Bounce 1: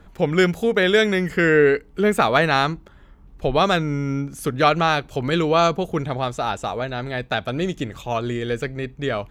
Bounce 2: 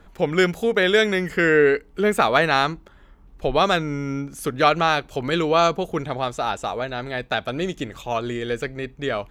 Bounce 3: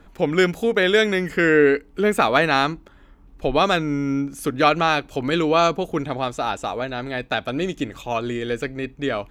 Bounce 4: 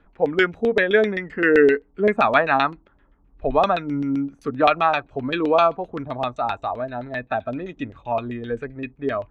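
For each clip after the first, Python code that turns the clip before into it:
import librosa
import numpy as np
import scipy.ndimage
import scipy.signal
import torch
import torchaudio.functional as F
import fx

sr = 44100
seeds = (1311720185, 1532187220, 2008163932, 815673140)

y1 = fx.peak_eq(x, sr, hz=110.0, db=-5.5, octaves=2.1)
y2 = fx.small_body(y1, sr, hz=(280.0, 2500.0), ring_ms=45, db=6)
y3 = fx.noise_reduce_blind(y2, sr, reduce_db=9)
y3 = fx.filter_lfo_lowpass(y3, sr, shape='saw_down', hz=7.7, low_hz=540.0, high_hz=3400.0, q=1.4)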